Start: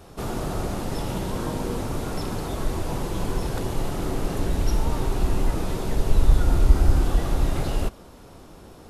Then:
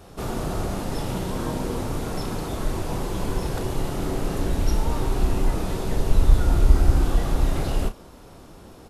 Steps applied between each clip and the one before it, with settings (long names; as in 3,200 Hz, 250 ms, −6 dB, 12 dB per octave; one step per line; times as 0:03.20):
double-tracking delay 32 ms −9.5 dB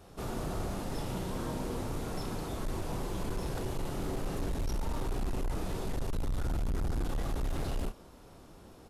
hard clipping −20.5 dBFS, distortion −5 dB
level −8 dB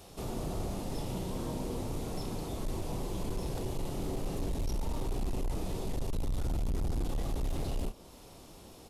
parametric band 1,500 Hz −9 dB 0.86 octaves
one half of a high-frequency compander encoder only